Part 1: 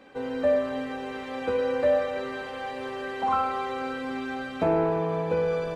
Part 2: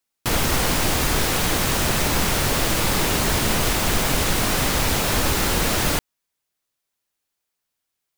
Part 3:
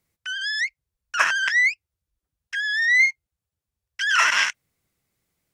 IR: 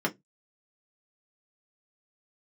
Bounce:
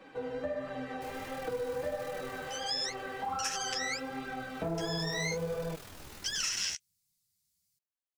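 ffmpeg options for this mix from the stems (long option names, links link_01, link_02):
-filter_complex "[0:a]aecho=1:1:6.2:0.46,acrossover=split=160[link_01][link_02];[link_02]acompressor=threshold=-39dB:ratio=2[link_03];[link_01][link_03]amix=inputs=2:normalize=0,volume=1.5dB[link_04];[1:a]alimiter=limit=-18dB:level=0:latency=1:release=152,tremolo=f=40:d=0.919,adelay=750,volume=-6dB,afade=type=out:start_time=2.29:duration=0.32:silence=0.398107,afade=type=in:start_time=4.52:duration=0.6:silence=0.334965[link_05];[2:a]firequalizer=gain_entry='entry(190,0);entry(300,-19);entry(4500,13)':delay=0.05:min_phase=1,adelay=2250,volume=-9dB[link_06];[link_04][link_05][link_06]amix=inputs=3:normalize=0,flanger=delay=5:depth=9.4:regen=3:speed=1.4:shape=triangular,acompressor=threshold=-30dB:ratio=5"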